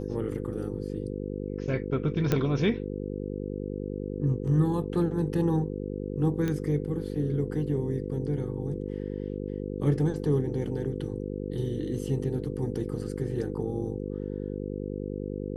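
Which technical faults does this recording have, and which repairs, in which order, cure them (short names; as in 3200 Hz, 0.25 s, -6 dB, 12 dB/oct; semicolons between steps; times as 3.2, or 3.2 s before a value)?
buzz 50 Hz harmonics 10 -34 dBFS
2.32 pop -11 dBFS
6.48 pop -18 dBFS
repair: de-click; de-hum 50 Hz, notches 10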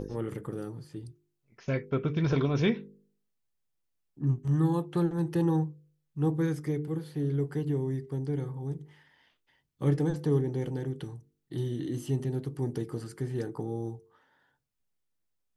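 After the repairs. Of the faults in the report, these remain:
none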